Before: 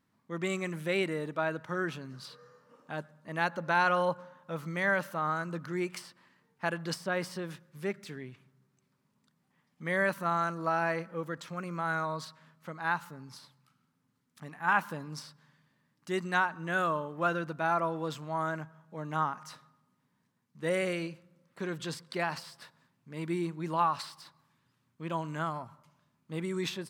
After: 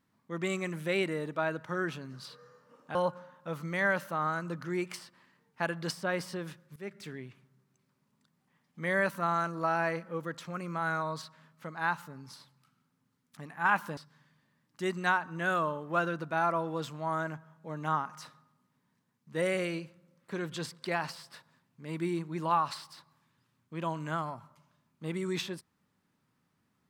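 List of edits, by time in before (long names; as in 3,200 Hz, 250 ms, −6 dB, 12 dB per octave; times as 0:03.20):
0:02.95–0:03.98: remove
0:07.79–0:08.08: fade in, from −16.5 dB
0:15.00–0:15.25: remove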